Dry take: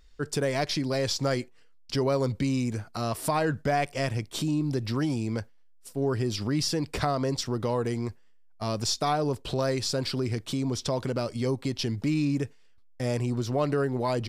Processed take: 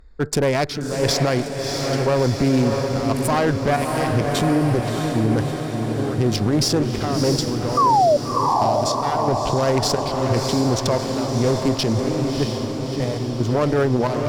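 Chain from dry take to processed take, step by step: local Wiener filter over 15 samples; 7.37–9.03 s: compression, threshold -34 dBFS, peak gain reduction 10 dB; one-sided clip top -30.5 dBFS, bottom -17 dBFS; square tremolo 0.97 Hz, depth 65%, duty 65%; 7.77–8.17 s: painted sound fall 560–1200 Hz -23 dBFS; echo that smears into a reverb 651 ms, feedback 64%, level -5 dB; loudness maximiser +19 dB; trim -8 dB

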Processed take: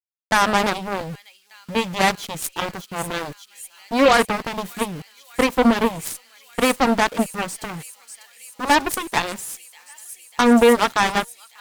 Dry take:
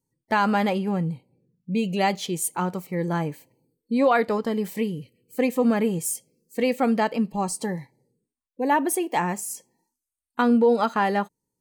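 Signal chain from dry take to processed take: small samples zeroed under -36.5 dBFS; feedback echo behind a high-pass 594 ms, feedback 80%, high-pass 3.2 kHz, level -11 dB; Chebyshev shaper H 3 -19 dB, 6 -32 dB, 7 -14 dB, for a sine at -10.5 dBFS; trim +5.5 dB

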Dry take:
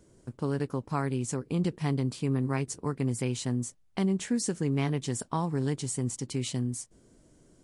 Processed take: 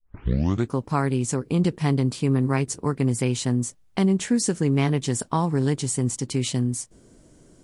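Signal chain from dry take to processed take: tape start-up on the opening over 0.75 s; trim +7 dB

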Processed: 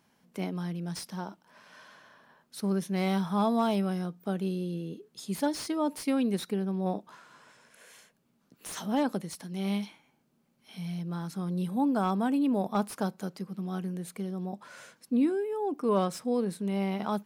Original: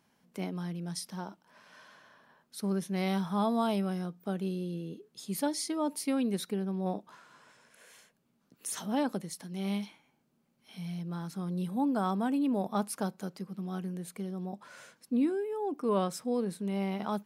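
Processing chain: slew-rate limiter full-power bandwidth 66 Hz; trim +2.5 dB

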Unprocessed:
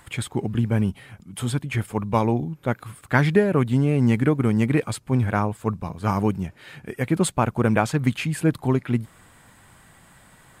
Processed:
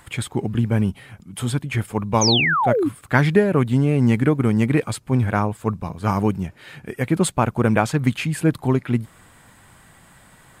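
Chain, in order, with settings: painted sound fall, 2.21–2.89 s, 260–6700 Hz -21 dBFS; trim +2 dB

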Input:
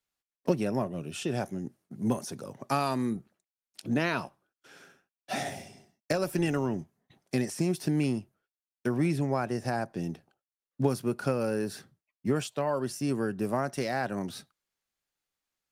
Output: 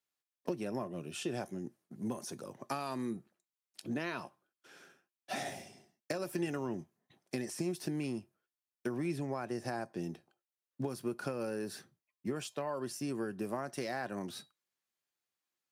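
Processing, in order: high-pass 160 Hz 6 dB/octave; compression, threshold -29 dBFS, peak gain reduction 9 dB; feedback comb 350 Hz, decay 0.19 s, harmonics odd, mix 60%; trim +3.5 dB

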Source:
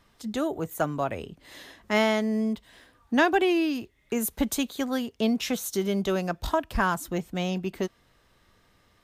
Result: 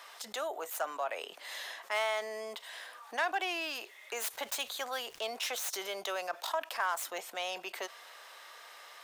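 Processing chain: tracing distortion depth 0.081 ms; high-pass 610 Hz 24 dB/octave; 4.32–5.36 s: crackle 350 per s -55 dBFS; level flattener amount 50%; trim -9 dB

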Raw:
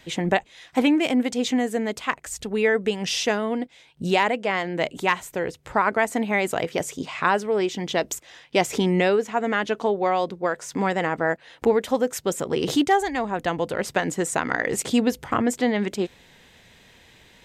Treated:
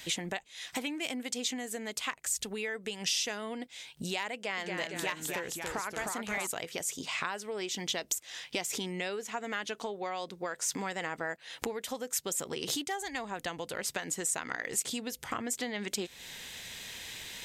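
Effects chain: treble shelf 3.8 kHz +9.5 dB; compression 6:1, threshold -33 dBFS, peak gain reduction 18 dB; 4.35–6.47 s: ever faster or slower copies 224 ms, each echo -1 st, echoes 2; gain riding within 4 dB 2 s; tilt shelf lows -4 dB, about 1.2 kHz

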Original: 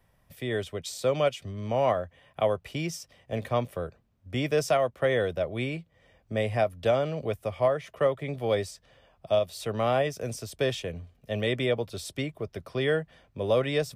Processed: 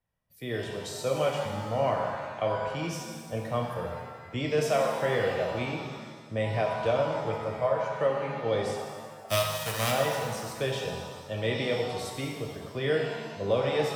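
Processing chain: 9.27–9.90 s: formants flattened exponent 0.3; spectral noise reduction 15 dB; pitch-shifted reverb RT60 1.6 s, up +7 st, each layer -8 dB, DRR 0 dB; trim -4 dB

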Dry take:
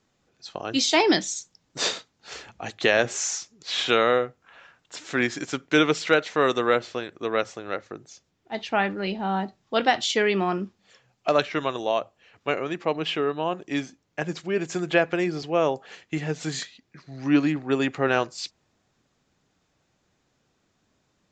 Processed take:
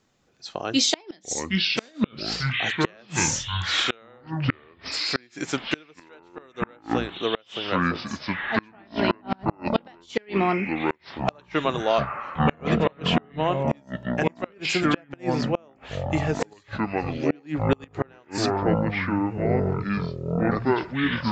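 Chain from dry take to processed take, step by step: ever faster or slower copies 462 ms, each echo -6 st, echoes 3; inverted gate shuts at -11 dBFS, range -33 dB; trim +2.5 dB

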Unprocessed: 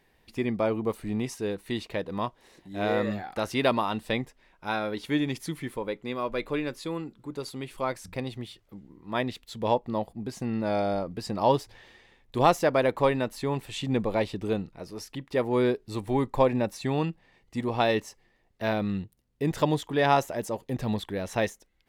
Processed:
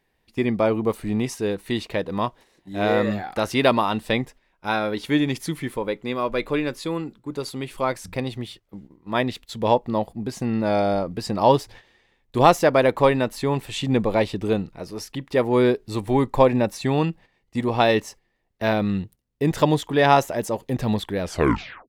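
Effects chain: tape stop on the ending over 0.68 s; gate -48 dBFS, range -11 dB; trim +6 dB

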